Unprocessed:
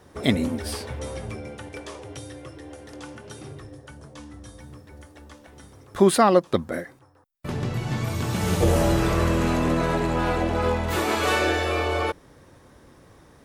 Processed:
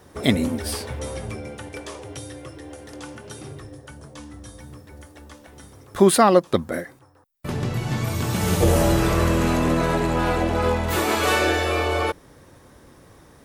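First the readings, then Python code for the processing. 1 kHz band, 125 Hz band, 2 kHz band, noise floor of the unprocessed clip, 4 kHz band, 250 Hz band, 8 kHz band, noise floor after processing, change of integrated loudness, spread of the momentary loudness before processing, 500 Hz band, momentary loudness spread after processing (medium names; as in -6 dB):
+2.0 dB, +2.0 dB, +2.0 dB, -53 dBFS, +2.5 dB, +2.0 dB, +4.5 dB, -51 dBFS, +2.0 dB, 21 LU, +2.0 dB, 21 LU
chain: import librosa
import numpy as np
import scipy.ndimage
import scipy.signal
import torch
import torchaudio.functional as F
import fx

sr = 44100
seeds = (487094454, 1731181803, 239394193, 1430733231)

y = fx.high_shelf(x, sr, hz=9800.0, db=7.0)
y = y * librosa.db_to_amplitude(2.0)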